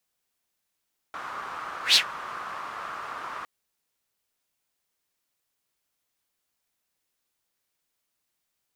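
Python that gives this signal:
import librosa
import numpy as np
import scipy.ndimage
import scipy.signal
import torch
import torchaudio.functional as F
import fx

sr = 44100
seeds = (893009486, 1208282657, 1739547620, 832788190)

y = fx.whoosh(sr, seeds[0], length_s=2.31, peak_s=0.81, rise_s=0.12, fall_s=0.11, ends_hz=1200.0, peak_hz=4200.0, q=4.1, swell_db=20.0)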